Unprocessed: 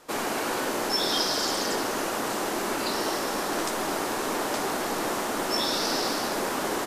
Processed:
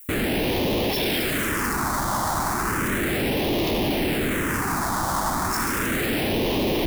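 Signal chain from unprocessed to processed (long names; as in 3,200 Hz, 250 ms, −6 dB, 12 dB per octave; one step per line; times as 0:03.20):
0:02.11–0:02.81: high-pass filter 280 Hz 12 dB per octave
in parallel at −3 dB: brickwall limiter −25 dBFS, peak gain reduction 11 dB
on the sum: comparator with hysteresis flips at −26.5 dBFS
background noise violet −49 dBFS
all-pass phaser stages 4, 0.34 Hz, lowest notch 430–1,400 Hz
level +5 dB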